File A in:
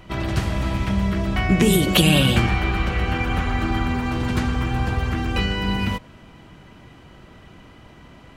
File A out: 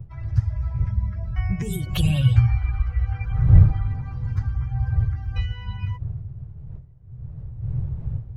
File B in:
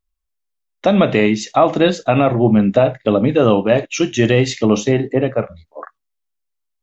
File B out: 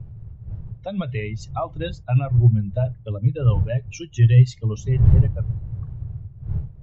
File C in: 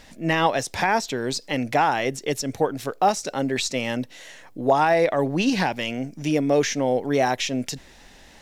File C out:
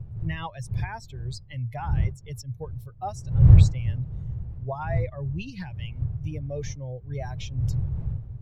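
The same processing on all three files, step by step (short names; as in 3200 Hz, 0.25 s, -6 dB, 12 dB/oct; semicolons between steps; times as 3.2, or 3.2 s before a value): per-bin expansion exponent 2; wind noise 200 Hz -30 dBFS; resonant low shelf 170 Hz +13.5 dB, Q 3; gain -10.5 dB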